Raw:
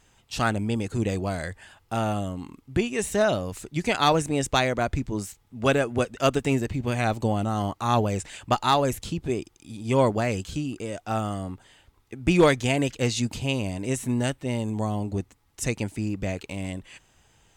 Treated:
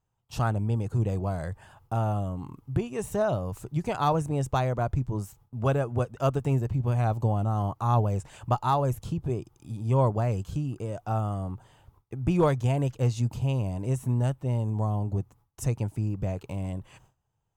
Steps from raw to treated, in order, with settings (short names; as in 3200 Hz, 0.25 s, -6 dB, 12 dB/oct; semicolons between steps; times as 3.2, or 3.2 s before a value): gate with hold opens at -46 dBFS; ten-band EQ 125 Hz +10 dB, 250 Hz -5 dB, 1000 Hz +5 dB, 2000 Hz -10 dB, 4000 Hz -8 dB, 8000 Hz -7 dB; in parallel at +2.5 dB: compressor, threshold -33 dBFS, peak gain reduction 18.5 dB; on the sum: gain -6.5 dB